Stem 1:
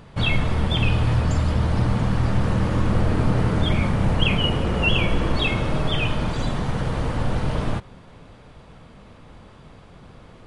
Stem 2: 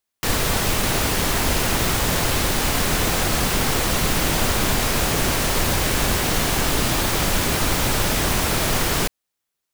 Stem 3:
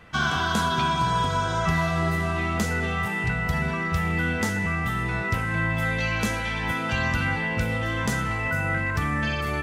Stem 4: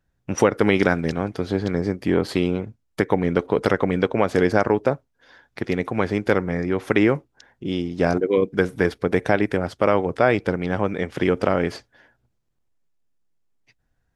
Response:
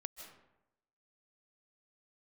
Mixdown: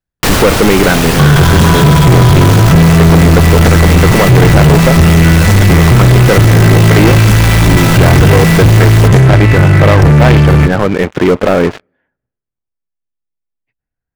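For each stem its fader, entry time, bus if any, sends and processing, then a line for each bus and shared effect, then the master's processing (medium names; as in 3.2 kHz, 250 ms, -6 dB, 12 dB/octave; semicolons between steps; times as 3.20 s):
-18.5 dB, 0.20 s, no send, none
+0.5 dB, 0.00 s, send -14.5 dB, treble shelf 5.4 kHz -5 dB; auto duck -12 dB, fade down 0.50 s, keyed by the fourth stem
-5.0 dB, 1.05 s, send -13.5 dB, resonant low shelf 200 Hz +12.5 dB, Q 3
-3.0 dB, 0.00 s, send -16.5 dB, low-pass 2.8 kHz 24 dB/octave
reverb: on, RT60 0.90 s, pre-delay 115 ms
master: waveshaping leveller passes 5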